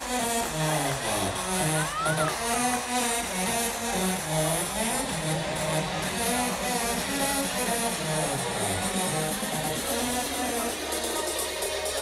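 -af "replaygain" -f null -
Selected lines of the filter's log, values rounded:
track_gain = +10.8 dB
track_peak = 0.184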